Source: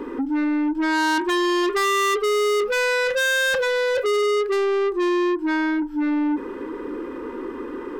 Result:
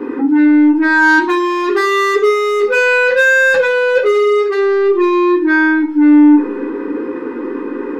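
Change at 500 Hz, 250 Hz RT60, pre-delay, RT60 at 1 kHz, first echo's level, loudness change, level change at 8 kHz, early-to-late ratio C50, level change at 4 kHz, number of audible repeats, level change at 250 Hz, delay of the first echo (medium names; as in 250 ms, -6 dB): +8.5 dB, 0.70 s, 3 ms, 0.40 s, no echo, +9.5 dB, -1.0 dB, 11.0 dB, 0.0 dB, no echo, +11.5 dB, no echo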